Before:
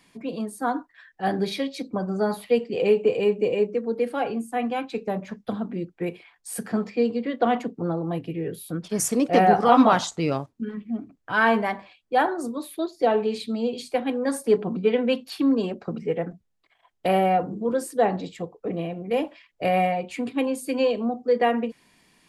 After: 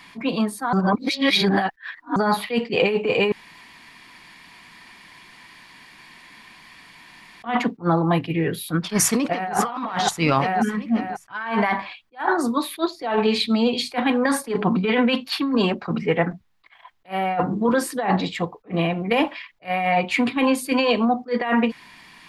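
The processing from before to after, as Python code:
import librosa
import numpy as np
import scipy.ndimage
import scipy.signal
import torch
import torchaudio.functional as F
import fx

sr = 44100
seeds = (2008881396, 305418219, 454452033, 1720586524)

y = fx.echo_throw(x, sr, start_s=8.98, length_s=0.56, ms=540, feedback_pct=40, wet_db=-8.5)
y = fx.edit(y, sr, fx.reverse_span(start_s=0.73, length_s=1.43),
    fx.room_tone_fill(start_s=3.32, length_s=4.12), tone=tone)
y = fx.graphic_eq(y, sr, hz=(500, 1000, 2000, 4000, 8000), db=(-6, 8, 6, 5, -5))
y = fx.over_compress(y, sr, threshold_db=-25.0, ratio=-1.0)
y = fx.attack_slew(y, sr, db_per_s=340.0)
y = y * librosa.db_to_amplitude(5.0)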